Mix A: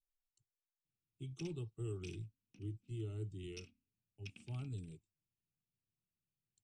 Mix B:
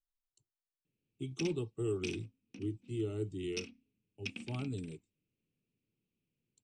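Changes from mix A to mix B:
background +4.5 dB; master: add graphic EQ 250/500/1000/2000/4000/8000 Hz +10/+10/+7/+7/+5/+6 dB

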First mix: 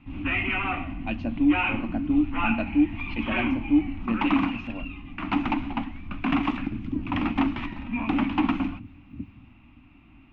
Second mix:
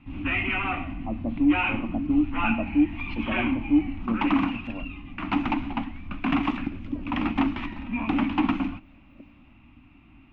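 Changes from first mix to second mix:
speech: add brick-wall FIR low-pass 1.3 kHz; second sound: add resonant high-pass 580 Hz, resonance Q 5

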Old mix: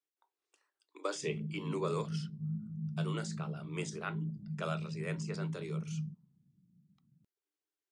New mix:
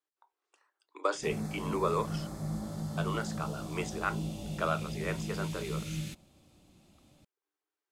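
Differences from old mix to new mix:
background: remove Butterworth band-pass 160 Hz, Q 2.1; master: add peaking EQ 1 kHz +9.5 dB 2.1 oct

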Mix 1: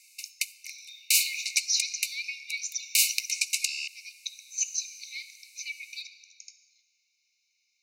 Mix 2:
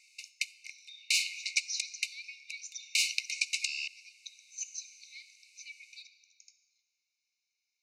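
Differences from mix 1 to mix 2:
speech -10.5 dB; background: add distance through air 93 m

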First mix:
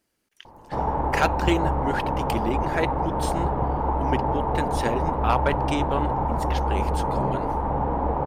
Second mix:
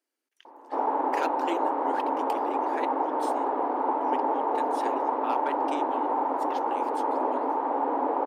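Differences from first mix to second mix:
speech -10.0 dB; master: add Chebyshev high-pass 260 Hz, order 6

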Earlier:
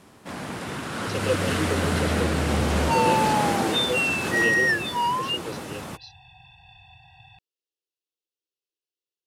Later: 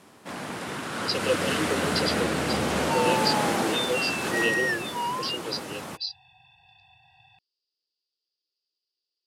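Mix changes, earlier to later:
speech: add resonant low-pass 4.8 kHz, resonance Q 14; second sound -5.5 dB; master: add high-pass 200 Hz 6 dB/octave

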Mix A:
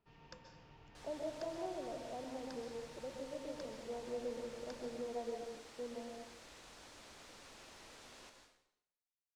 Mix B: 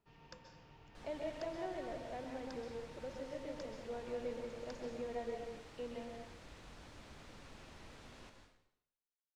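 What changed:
speech: remove Savitzky-Golay filter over 65 samples; second sound: add tone controls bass +11 dB, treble -7 dB

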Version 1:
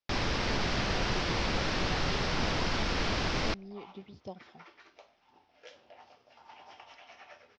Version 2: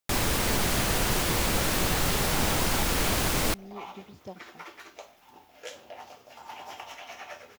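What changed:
first sound +3.0 dB; second sound +9.5 dB; master: remove elliptic low-pass 5.4 kHz, stop band 80 dB

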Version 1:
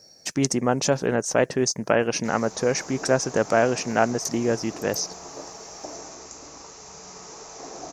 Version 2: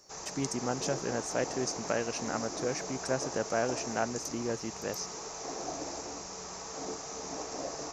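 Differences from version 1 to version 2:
speech -11.0 dB; background: entry -2.15 s

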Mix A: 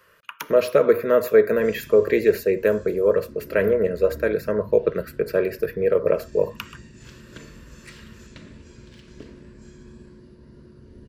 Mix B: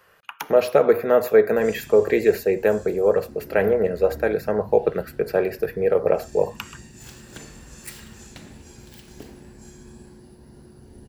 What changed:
background: remove distance through air 110 m; master: remove Butterworth band-stop 780 Hz, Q 2.9

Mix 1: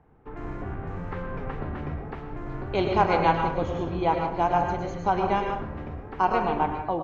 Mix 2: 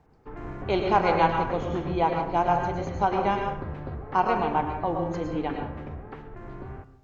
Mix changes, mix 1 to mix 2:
speech: entry -2.05 s; background: send -8.0 dB

